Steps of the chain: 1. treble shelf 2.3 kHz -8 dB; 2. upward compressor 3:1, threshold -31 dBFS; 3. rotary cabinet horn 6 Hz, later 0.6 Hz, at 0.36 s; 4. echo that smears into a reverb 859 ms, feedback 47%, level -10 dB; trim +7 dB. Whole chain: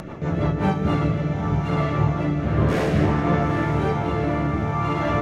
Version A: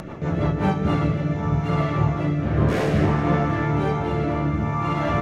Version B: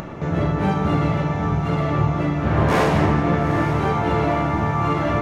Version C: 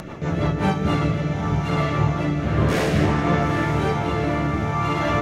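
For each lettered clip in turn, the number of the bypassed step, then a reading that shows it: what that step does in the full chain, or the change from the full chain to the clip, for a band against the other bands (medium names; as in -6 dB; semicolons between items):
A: 4, echo-to-direct -9.0 dB to none; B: 3, 125 Hz band -2.0 dB; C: 1, 4 kHz band +5.0 dB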